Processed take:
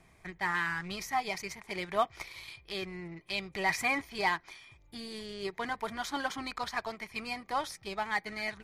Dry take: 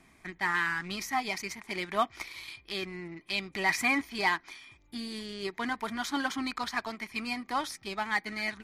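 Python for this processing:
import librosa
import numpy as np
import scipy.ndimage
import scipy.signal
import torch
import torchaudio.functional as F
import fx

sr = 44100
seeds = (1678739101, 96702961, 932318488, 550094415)

y = fx.curve_eq(x, sr, hz=(160.0, 250.0, 480.0, 1300.0), db=(0, -12, 0, -6))
y = F.gain(torch.from_numpy(y), 3.0).numpy()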